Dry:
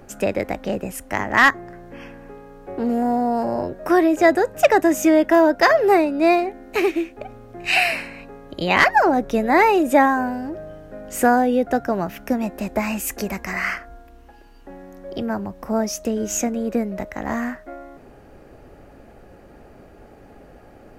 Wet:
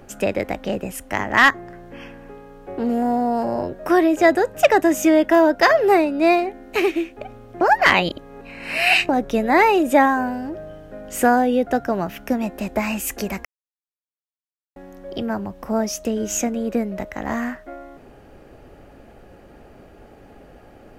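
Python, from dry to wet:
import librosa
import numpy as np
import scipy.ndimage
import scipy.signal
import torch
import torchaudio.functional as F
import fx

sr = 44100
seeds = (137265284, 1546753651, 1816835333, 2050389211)

y = fx.edit(x, sr, fx.reverse_span(start_s=7.61, length_s=1.48),
    fx.silence(start_s=13.45, length_s=1.31), tone=tone)
y = fx.peak_eq(y, sr, hz=3100.0, db=4.0, octaves=0.51)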